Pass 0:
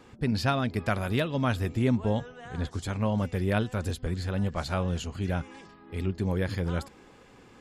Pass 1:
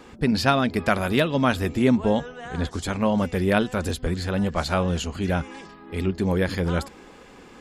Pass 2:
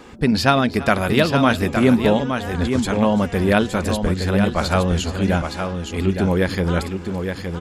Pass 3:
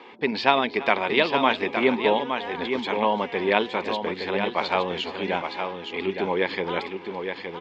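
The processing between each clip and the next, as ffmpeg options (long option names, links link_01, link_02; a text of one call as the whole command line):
ffmpeg -i in.wav -af "equalizer=frequency=110:width_type=o:width=0.4:gain=-14,volume=7.5dB" out.wav
ffmpeg -i in.wav -af "aecho=1:1:335|866:0.119|0.473,volume=4dB" out.wav
ffmpeg -i in.wav -af "highpass=380,equalizer=frequency=400:width_type=q:width=4:gain=4,equalizer=frequency=600:width_type=q:width=4:gain=-3,equalizer=frequency=930:width_type=q:width=4:gain=8,equalizer=frequency=1400:width_type=q:width=4:gain=-7,equalizer=frequency=2200:width_type=q:width=4:gain=7,equalizer=frequency=3300:width_type=q:width=4:gain=4,lowpass=frequency=4100:width=0.5412,lowpass=frequency=4100:width=1.3066,volume=-3dB" out.wav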